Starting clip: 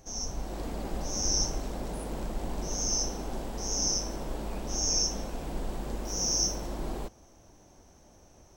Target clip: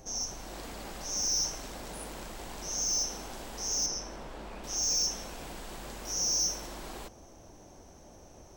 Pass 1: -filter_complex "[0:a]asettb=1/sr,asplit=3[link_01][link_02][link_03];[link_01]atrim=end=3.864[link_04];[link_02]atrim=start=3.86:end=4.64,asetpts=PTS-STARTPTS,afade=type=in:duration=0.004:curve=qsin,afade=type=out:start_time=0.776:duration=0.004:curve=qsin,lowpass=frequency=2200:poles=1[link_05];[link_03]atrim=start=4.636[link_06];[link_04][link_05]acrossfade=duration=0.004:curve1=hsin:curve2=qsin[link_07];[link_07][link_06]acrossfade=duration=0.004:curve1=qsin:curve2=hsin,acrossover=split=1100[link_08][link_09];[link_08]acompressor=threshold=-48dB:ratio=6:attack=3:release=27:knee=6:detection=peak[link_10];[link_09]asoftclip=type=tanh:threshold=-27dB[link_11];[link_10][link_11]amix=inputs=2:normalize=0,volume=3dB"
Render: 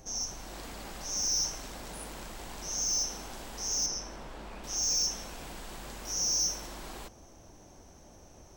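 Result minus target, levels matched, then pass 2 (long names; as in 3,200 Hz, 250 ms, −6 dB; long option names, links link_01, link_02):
500 Hz band −2.5 dB
-filter_complex "[0:a]asettb=1/sr,asplit=3[link_01][link_02][link_03];[link_01]atrim=end=3.864[link_04];[link_02]atrim=start=3.86:end=4.64,asetpts=PTS-STARTPTS,afade=type=in:duration=0.004:curve=qsin,afade=type=out:start_time=0.776:duration=0.004:curve=qsin,lowpass=frequency=2200:poles=1[link_05];[link_03]atrim=start=4.636[link_06];[link_04][link_05]acrossfade=duration=0.004:curve1=hsin:curve2=qsin[link_07];[link_07][link_06]acrossfade=duration=0.004:curve1=qsin:curve2=hsin,acrossover=split=1100[link_08][link_09];[link_08]acompressor=threshold=-48dB:ratio=6:attack=3:release=27:knee=6:detection=peak,equalizer=frequency=570:width=0.6:gain=3[link_10];[link_09]asoftclip=type=tanh:threshold=-27dB[link_11];[link_10][link_11]amix=inputs=2:normalize=0,volume=3dB"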